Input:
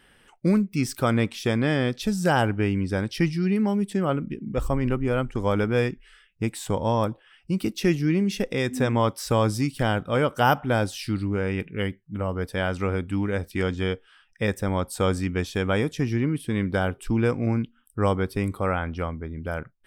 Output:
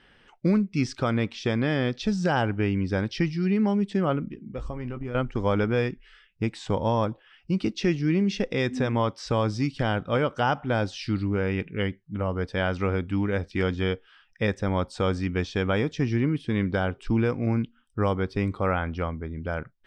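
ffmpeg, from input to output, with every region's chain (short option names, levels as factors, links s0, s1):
-filter_complex "[0:a]asettb=1/sr,asplit=3[s0][s1][s2];[s0]atrim=end=4.294[s3];[s1]atrim=start=4.29:end=5.15,asetpts=PTS-STARTPTS,afade=t=in:d=0.004:c=qsin,afade=t=out:st=0.856:d=0.004:c=qsin,agate=range=0.447:threshold=0.0355:ratio=16:release=100:detection=peak,asplit=2[s4][s5];[s5]adelay=17,volume=0.316[s6];[s4][s6]amix=inputs=2:normalize=0,atrim=end_sample=37926,acompressor=threshold=0.0355:ratio=6:attack=3.2:release=140:knee=1:detection=peak[s7];[s2]atrim=start=5.146[s8];[s3][s7]acrossfade=d=0.004:c1=hsin:c2=qsin[s9];[s9][s8]acrossfade=d=0.004:c1=qsin:c2=hsin,lowpass=f=5800:w=0.5412,lowpass=f=5800:w=1.3066,alimiter=limit=0.237:level=0:latency=1:release=356"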